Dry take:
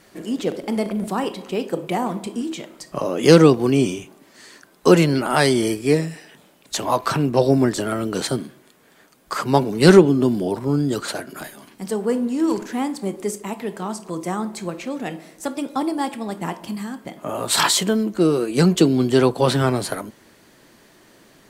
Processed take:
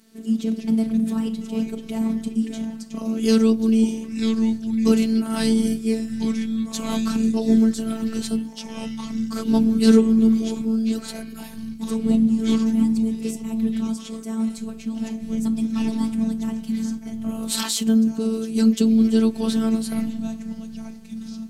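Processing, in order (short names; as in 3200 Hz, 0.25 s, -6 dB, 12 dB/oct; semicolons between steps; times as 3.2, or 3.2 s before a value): graphic EQ 250/500/1000/2000 Hz +10/-9/-7/-7 dB; echoes that change speed 86 ms, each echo -4 st, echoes 3, each echo -6 dB; robotiser 223 Hz; gain -2.5 dB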